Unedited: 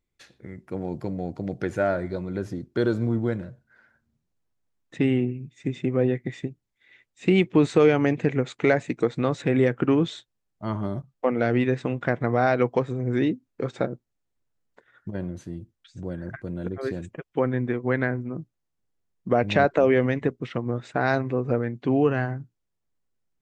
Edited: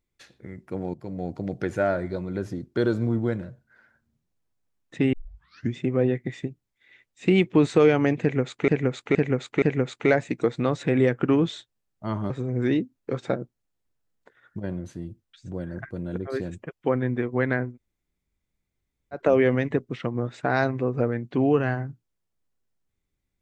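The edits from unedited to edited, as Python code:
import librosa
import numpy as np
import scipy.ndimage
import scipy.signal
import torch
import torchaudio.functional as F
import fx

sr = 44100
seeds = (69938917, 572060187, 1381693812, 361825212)

y = fx.edit(x, sr, fx.fade_in_from(start_s=0.94, length_s=0.3, floor_db=-16.0),
    fx.tape_start(start_s=5.13, length_s=0.63),
    fx.repeat(start_s=8.21, length_s=0.47, count=4),
    fx.cut(start_s=10.89, length_s=1.92),
    fx.room_tone_fill(start_s=18.21, length_s=1.49, crossfade_s=0.16), tone=tone)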